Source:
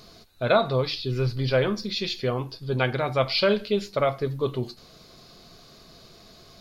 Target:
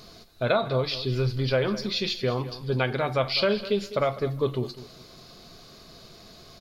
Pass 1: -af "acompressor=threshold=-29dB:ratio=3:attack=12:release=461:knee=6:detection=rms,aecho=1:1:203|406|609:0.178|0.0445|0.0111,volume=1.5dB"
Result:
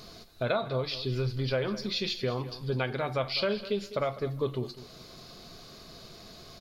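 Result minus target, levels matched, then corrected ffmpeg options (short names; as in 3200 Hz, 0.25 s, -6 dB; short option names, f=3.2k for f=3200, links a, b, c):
compressor: peak gain reduction +5.5 dB
-af "acompressor=threshold=-20.5dB:ratio=3:attack=12:release=461:knee=6:detection=rms,aecho=1:1:203|406|609:0.178|0.0445|0.0111,volume=1.5dB"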